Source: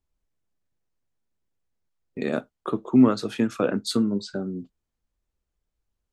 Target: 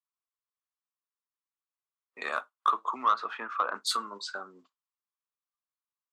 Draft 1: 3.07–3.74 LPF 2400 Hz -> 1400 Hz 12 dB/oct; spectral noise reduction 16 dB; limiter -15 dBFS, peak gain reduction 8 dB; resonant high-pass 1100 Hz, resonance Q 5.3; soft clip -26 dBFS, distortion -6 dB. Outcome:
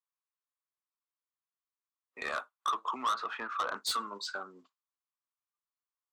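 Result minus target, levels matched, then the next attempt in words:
soft clip: distortion +11 dB
3.07–3.74 LPF 2400 Hz -> 1400 Hz 12 dB/oct; spectral noise reduction 16 dB; limiter -15 dBFS, peak gain reduction 8 dB; resonant high-pass 1100 Hz, resonance Q 5.3; soft clip -14.5 dBFS, distortion -17 dB

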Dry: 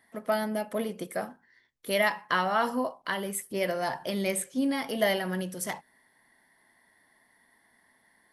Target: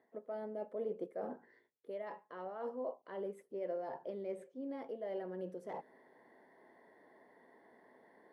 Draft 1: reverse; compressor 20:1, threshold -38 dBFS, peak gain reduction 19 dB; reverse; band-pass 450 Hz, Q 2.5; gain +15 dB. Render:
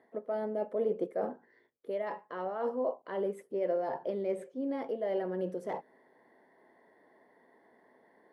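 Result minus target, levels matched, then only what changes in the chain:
compressor: peak gain reduction -8.5 dB
change: compressor 20:1, threshold -47 dBFS, peak gain reduction 27.5 dB

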